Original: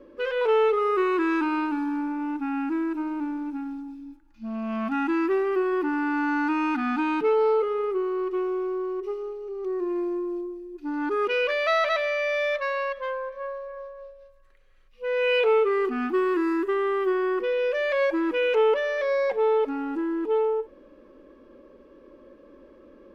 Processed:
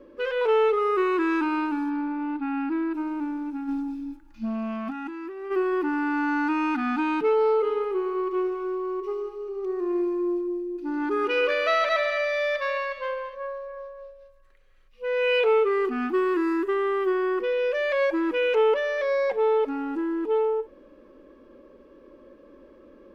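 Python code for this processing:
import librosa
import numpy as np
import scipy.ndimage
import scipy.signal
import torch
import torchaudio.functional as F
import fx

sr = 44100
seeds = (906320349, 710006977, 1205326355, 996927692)

y = fx.brickwall_lowpass(x, sr, high_hz=5000.0, at=(1.89, 2.93), fade=0.02)
y = fx.over_compress(y, sr, threshold_db=-33.0, ratio=-1.0, at=(3.67, 5.5), fade=0.02)
y = fx.echo_heads(y, sr, ms=71, heads='all three', feedback_pct=45, wet_db=-14.0, at=(7.63, 13.34), fade=0.02)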